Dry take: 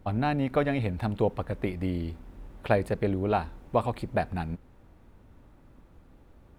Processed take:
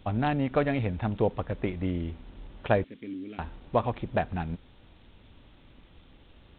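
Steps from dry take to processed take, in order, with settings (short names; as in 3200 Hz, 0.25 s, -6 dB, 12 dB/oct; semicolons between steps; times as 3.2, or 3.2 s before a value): 2.84–3.39 vowel filter i; added noise violet -43 dBFS; G.726 32 kbps 8000 Hz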